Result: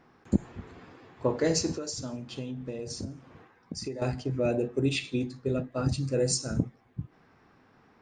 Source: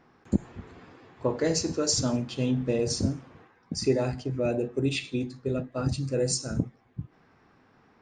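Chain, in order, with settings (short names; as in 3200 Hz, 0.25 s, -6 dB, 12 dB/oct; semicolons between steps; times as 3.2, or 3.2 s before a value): 1.75–4.02 compressor 6:1, threshold -34 dBFS, peak gain reduction 15 dB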